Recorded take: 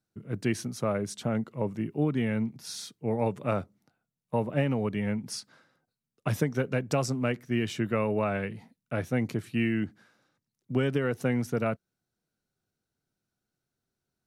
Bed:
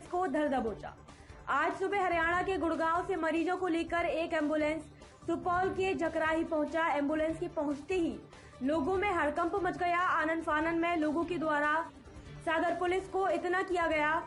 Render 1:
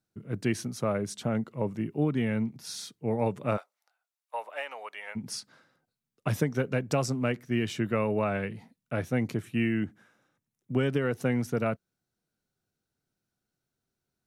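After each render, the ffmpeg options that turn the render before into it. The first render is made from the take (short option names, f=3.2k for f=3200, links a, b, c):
-filter_complex "[0:a]asplit=3[a][b][c];[a]afade=t=out:st=3.56:d=0.02[d];[b]highpass=f=700:w=0.5412,highpass=f=700:w=1.3066,afade=t=in:st=3.56:d=0.02,afade=t=out:st=5.15:d=0.02[e];[c]afade=t=in:st=5.15:d=0.02[f];[d][e][f]amix=inputs=3:normalize=0,asettb=1/sr,asplit=3[g][h][i];[g]atrim=end=9.414[j];[h]atrim=start=9.41:end=10.8,asetpts=PTS-STARTPTS,afade=t=in:d=0.004:c=qsin,afade=t=out:st=1.386:d=0.004:c=qsin,equalizer=f=4.5k:t=o:w=0.35:g=-11.5[k];[i]atrim=start=10.796[l];[j][k]acrossfade=d=0.004:c1=hsin:c2=qsin[m];[m][l]acrossfade=d=0.004:c1=qsin:c2=hsin"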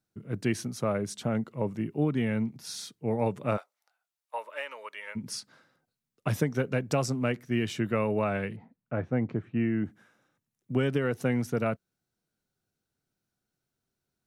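-filter_complex "[0:a]asettb=1/sr,asplit=3[a][b][c];[a]atrim=end=4.384[d];[b]atrim=start=4.38:end=5.37,asetpts=PTS-STARTPTS,afade=t=in:d=0.004:c=qsin,afade=t=out:st=0.986:d=0.004:c=qsin,asuperstop=centerf=750:order=4:qfactor=3.5[e];[c]atrim=start=5.366[f];[d][e]acrossfade=d=0.004:c1=hsin:c2=qsin[g];[g][f]acrossfade=d=0.004:c1=qsin:c2=hsin,asplit=3[h][i][j];[h]afade=t=out:st=8.55:d=0.02[k];[i]lowpass=1.5k,afade=t=in:st=8.55:d=0.02,afade=t=out:st=9.84:d=0.02[l];[j]afade=t=in:st=9.84:d=0.02[m];[k][l][m]amix=inputs=3:normalize=0"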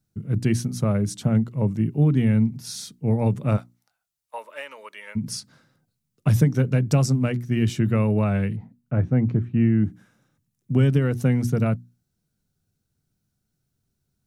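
-af "bass=f=250:g=15,treble=f=4k:g=6,bandreject=f=60:t=h:w=6,bandreject=f=120:t=h:w=6,bandreject=f=180:t=h:w=6,bandreject=f=240:t=h:w=6,bandreject=f=300:t=h:w=6,bandreject=f=360:t=h:w=6"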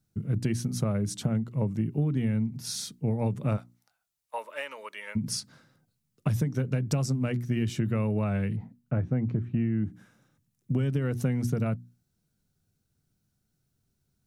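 -af "acompressor=threshold=-24dB:ratio=6"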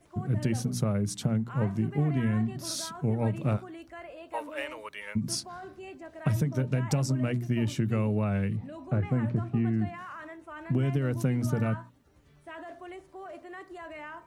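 -filter_complex "[1:a]volume=-12.5dB[a];[0:a][a]amix=inputs=2:normalize=0"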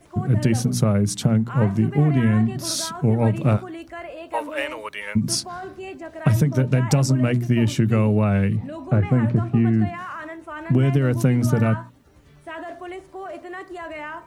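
-af "volume=9dB"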